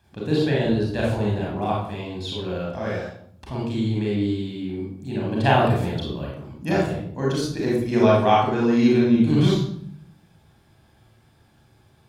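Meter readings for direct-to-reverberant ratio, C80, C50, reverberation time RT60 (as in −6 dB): −4.0 dB, 5.0 dB, 1.0 dB, 0.60 s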